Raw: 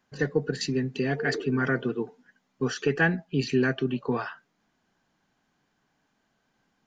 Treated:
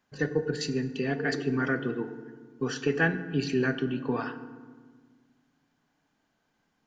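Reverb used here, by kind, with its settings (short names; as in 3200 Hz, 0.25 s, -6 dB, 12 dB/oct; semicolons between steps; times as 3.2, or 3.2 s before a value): FDN reverb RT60 1.5 s, low-frequency decay 1.5×, high-frequency decay 0.55×, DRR 9.5 dB; gain -2.5 dB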